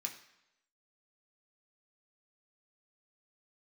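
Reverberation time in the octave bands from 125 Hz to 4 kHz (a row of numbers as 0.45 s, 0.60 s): 0.75 s, 0.80 s, 0.85 s, 0.85 s, 0.90 s, 0.85 s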